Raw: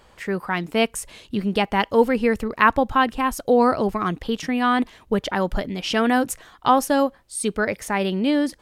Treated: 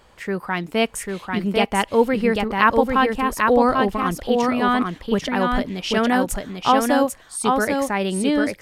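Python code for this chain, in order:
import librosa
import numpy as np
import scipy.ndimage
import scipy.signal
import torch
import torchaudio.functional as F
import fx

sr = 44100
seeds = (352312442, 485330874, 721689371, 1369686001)

y = x + 10.0 ** (-3.5 / 20.0) * np.pad(x, (int(794 * sr / 1000.0), 0))[:len(x)]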